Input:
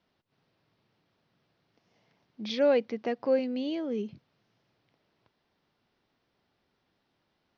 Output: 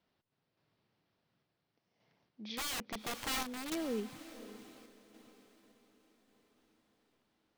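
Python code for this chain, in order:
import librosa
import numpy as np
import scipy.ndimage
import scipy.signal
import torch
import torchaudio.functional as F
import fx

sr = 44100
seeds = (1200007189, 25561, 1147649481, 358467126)

y = fx.dynamic_eq(x, sr, hz=1500.0, q=0.93, threshold_db=-43.0, ratio=4.0, max_db=4)
y = fx.overflow_wrap(y, sr, gain_db=26.5, at=(2.56, 3.85))
y = fx.echo_diffused(y, sr, ms=534, feedback_pct=48, wet_db=-13.0)
y = fx.tremolo_random(y, sr, seeds[0], hz=3.5, depth_pct=55)
y = y * librosa.db_to_amplitude(-4.0)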